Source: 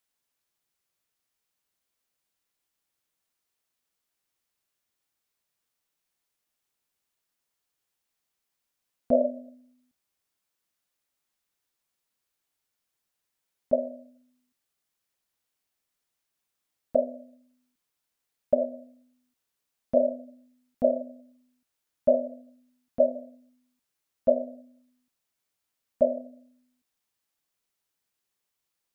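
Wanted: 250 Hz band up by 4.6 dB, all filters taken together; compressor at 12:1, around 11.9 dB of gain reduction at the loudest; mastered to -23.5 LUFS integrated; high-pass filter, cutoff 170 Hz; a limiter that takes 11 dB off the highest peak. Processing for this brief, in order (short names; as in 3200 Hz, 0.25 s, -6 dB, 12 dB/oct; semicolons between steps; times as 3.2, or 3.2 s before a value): HPF 170 Hz; bell 250 Hz +5.5 dB; compressor 12:1, threshold -27 dBFS; gain +18 dB; limiter -8.5 dBFS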